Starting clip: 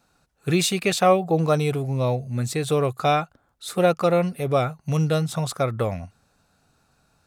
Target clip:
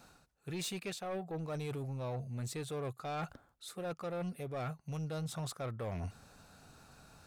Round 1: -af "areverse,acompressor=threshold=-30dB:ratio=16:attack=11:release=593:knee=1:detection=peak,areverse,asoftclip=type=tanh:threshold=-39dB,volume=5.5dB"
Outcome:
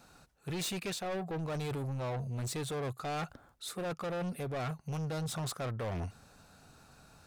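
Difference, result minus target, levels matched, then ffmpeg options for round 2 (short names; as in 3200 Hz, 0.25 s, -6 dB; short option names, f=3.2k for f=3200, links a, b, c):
compressor: peak gain reduction -7.5 dB
-af "areverse,acompressor=threshold=-38dB:ratio=16:attack=11:release=593:knee=1:detection=peak,areverse,asoftclip=type=tanh:threshold=-39dB,volume=5.5dB"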